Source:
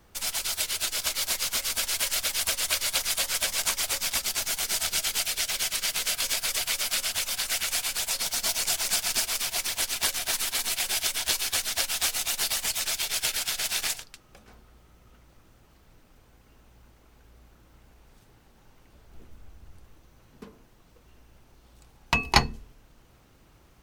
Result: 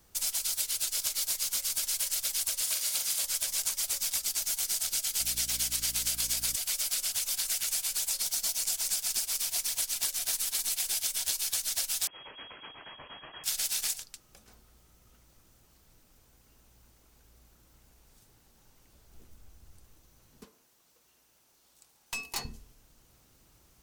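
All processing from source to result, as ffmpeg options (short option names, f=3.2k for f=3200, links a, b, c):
-filter_complex "[0:a]asettb=1/sr,asplit=3[a][b][c];[a]atrim=end=2.614[d];[b]atrim=start=2.61:end=3.25,asetpts=PTS-STARTPTS,afade=t=in:d=0.004:c=qsin,afade=t=out:st=0.636:d=0.004:c=qsin,highpass=f=98:w=0.5412,highpass=f=98:w=1.3066,asplit=2[e][f];[f]adelay=42,volume=-5dB[g];[e][g]amix=inputs=2:normalize=0,atrim=end_sample=28224[h];[c]atrim=start=3.246[i];[d][h]acrossfade=d=0.004:c1=hsin:c2=qsin[j];[j][i]acrossfade=d=0.004:c1=qsin:c2=hsin,asettb=1/sr,asplit=3[k][l][m];[k]atrim=end=5.204[n];[l]atrim=start=5.2:end=6.56,asetpts=PTS-STARTPTS,afade=t=in:d=0.004:c=qsin,afade=t=out:st=1.356:d=0.004:c=qsin,acontrast=30,aeval=exprs='val(0)+0.0251*(sin(2*PI*60*n/s)+sin(2*PI*2*60*n/s)/2+sin(2*PI*3*60*n/s)/3+sin(2*PI*4*60*n/s)/4+sin(2*PI*5*60*n/s)/5)':c=same[o];[m]atrim=start=6.556[p];[n][o]acrossfade=d=0.004:c1=hsin:c2=qsin[q];[q][p]acrossfade=d=0.004:c1=qsin:c2=hsin,asettb=1/sr,asplit=3[r][s][t];[r]atrim=end=12.074[u];[s]atrim=start=12.07:end=13.44,asetpts=PTS-STARTPTS,afade=t=in:d=0.004:c=qsin,afade=t=out:st=1.366:d=0.004:c=qsin,bandreject=f=650:w=7.8,acompressor=threshold=-29dB:ratio=6:attack=3.2:release=140:knee=1:detection=peak,lowpass=f=2.8k:t=q:w=0.5098,lowpass=f=2.8k:t=q:w=0.6013,lowpass=f=2.8k:t=q:w=0.9,lowpass=f=2.8k:t=q:w=2.563,afreqshift=-3300[v];[t]atrim=start=13.436[w];[u][v]acrossfade=d=0.004:c1=hsin:c2=qsin[x];[x][w]acrossfade=d=0.004:c1=qsin:c2=hsin,asettb=1/sr,asplit=3[y][z][aa];[y]atrim=end=20.454[ab];[z]atrim=start=20.45:end=22.45,asetpts=PTS-STARTPTS,afade=t=in:d=0.004:c=qsin,afade=t=out:st=1.996:d=0.004:c=qsin,highpass=f=520:p=1,aeval=exprs='(tanh(22.4*val(0)+0.35)-tanh(0.35))/22.4':c=same[ac];[aa]atrim=start=22.446[ad];[ab][ac]acrossfade=d=0.004:c1=hsin:c2=qsin[ae];[ae][ad]acrossfade=d=0.004:c1=qsin:c2=hsin,bass=f=250:g=1,treble=f=4k:g=12,acompressor=threshold=-20dB:ratio=6,volume=-7.5dB"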